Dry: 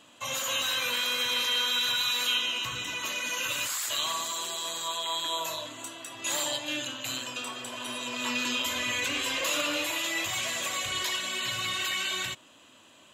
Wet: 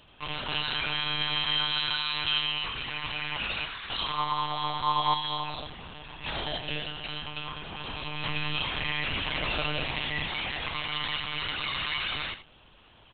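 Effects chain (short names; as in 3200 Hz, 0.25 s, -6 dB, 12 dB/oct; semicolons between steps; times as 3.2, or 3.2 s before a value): 4.18–5.14 bell 870 Hz +11.5 dB 1.1 oct; monotone LPC vocoder at 8 kHz 150 Hz; echo 81 ms -12 dB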